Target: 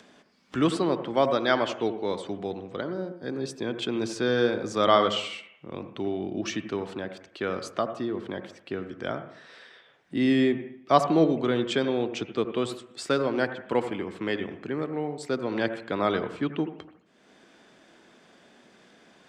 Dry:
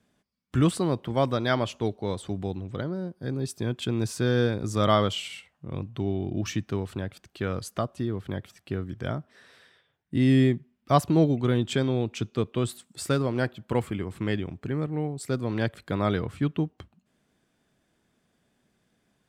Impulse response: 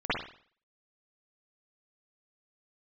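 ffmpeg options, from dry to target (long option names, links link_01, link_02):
-filter_complex "[0:a]acrossover=split=230 7200:gain=0.112 1 0.0794[link_01][link_02][link_03];[link_01][link_02][link_03]amix=inputs=3:normalize=0,acompressor=mode=upward:threshold=-45dB:ratio=2.5,asplit=2[link_04][link_05];[1:a]atrim=start_sample=2205,asetrate=33516,aresample=44100,adelay=12[link_06];[link_05][link_06]afir=irnorm=-1:irlink=0,volume=-23dB[link_07];[link_04][link_07]amix=inputs=2:normalize=0,volume=2.5dB"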